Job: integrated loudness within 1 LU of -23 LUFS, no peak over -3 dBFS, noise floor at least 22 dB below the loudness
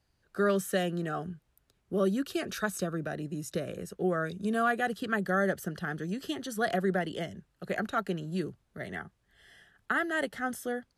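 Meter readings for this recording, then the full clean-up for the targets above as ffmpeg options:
loudness -32.0 LUFS; peak -16.0 dBFS; loudness target -23.0 LUFS
-> -af "volume=9dB"

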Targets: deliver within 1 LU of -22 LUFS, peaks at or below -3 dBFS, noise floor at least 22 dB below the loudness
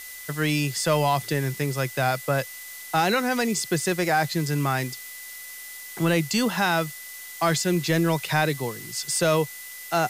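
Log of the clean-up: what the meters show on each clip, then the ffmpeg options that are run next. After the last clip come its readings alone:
steady tone 2000 Hz; tone level -42 dBFS; noise floor -40 dBFS; noise floor target -47 dBFS; loudness -24.5 LUFS; peak -9.0 dBFS; loudness target -22.0 LUFS
-> -af "bandreject=f=2k:w=30"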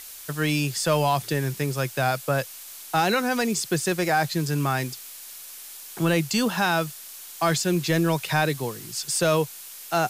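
steady tone none; noise floor -42 dBFS; noise floor target -47 dBFS
-> -af "afftdn=nr=6:nf=-42"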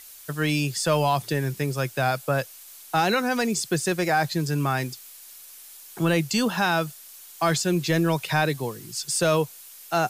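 noise floor -46 dBFS; noise floor target -47 dBFS
-> -af "afftdn=nr=6:nf=-46"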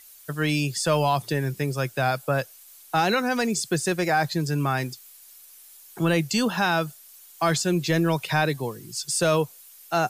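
noise floor -50 dBFS; loudness -24.5 LUFS; peak -9.5 dBFS; loudness target -22.0 LUFS
-> -af "volume=2.5dB"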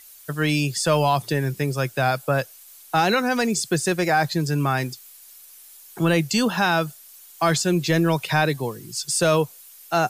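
loudness -22.0 LUFS; peak -7.0 dBFS; noise floor -47 dBFS

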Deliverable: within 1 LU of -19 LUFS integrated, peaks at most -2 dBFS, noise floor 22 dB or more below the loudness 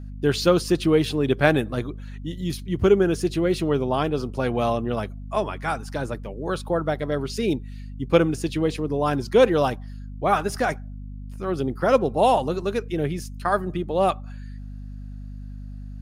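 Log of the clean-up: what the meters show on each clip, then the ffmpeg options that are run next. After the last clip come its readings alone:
hum 50 Hz; harmonics up to 250 Hz; hum level -33 dBFS; loudness -23.5 LUFS; peak -3.0 dBFS; loudness target -19.0 LUFS
-> -af "bandreject=f=50:t=h:w=4,bandreject=f=100:t=h:w=4,bandreject=f=150:t=h:w=4,bandreject=f=200:t=h:w=4,bandreject=f=250:t=h:w=4"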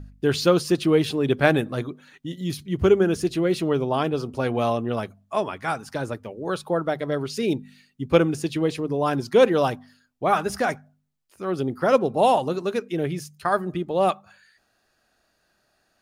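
hum none; loudness -23.5 LUFS; peak -3.0 dBFS; loudness target -19.0 LUFS
-> -af "volume=4.5dB,alimiter=limit=-2dB:level=0:latency=1"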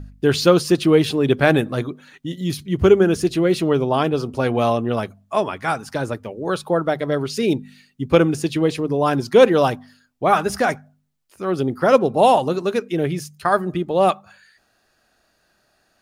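loudness -19.0 LUFS; peak -2.0 dBFS; noise floor -65 dBFS

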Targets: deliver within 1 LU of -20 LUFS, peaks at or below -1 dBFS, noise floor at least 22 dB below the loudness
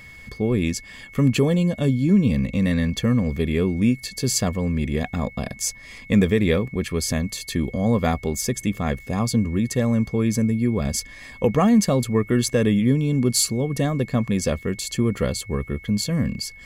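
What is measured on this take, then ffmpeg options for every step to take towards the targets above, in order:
steady tone 2200 Hz; tone level -42 dBFS; loudness -22.0 LUFS; peak -7.0 dBFS; loudness target -20.0 LUFS
-> -af "bandreject=f=2.2k:w=30"
-af "volume=2dB"

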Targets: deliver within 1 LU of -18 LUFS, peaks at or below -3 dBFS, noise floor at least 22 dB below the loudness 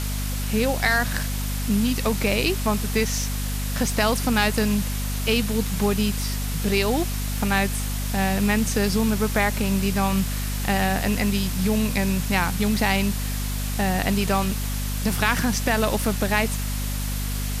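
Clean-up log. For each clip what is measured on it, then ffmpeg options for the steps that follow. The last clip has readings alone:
hum 50 Hz; harmonics up to 250 Hz; hum level -24 dBFS; noise floor -27 dBFS; noise floor target -46 dBFS; loudness -23.5 LUFS; peak -6.0 dBFS; loudness target -18.0 LUFS
-> -af "bandreject=f=50:t=h:w=4,bandreject=f=100:t=h:w=4,bandreject=f=150:t=h:w=4,bandreject=f=200:t=h:w=4,bandreject=f=250:t=h:w=4"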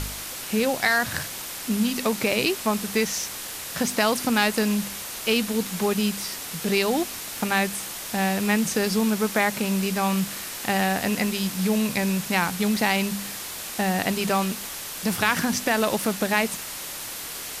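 hum none; noise floor -35 dBFS; noise floor target -47 dBFS
-> -af "afftdn=nr=12:nf=-35"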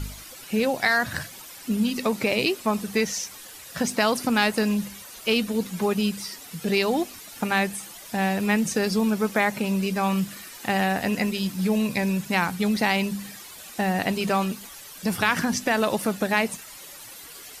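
noise floor -43 dBFS; noise floor target -47 dBFS
-> -af "afftdn=nr=6:nf=-43"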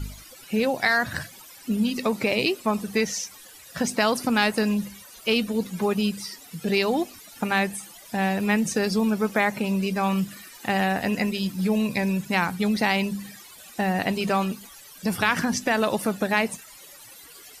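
noise floor -47 dBFS; loudness -25.0 LUFS; peak -7.0 dBFS; loudness target -18.0 LUFS
-> -af "volume=7dB,alimiter=limit=-3dB:level=0:latency=1"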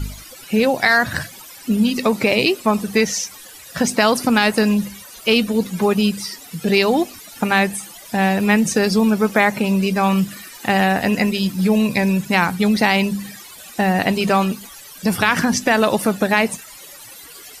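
loudness -18.0 LUFS; peak -3.0 dBFS; noise floor -40 dBFS

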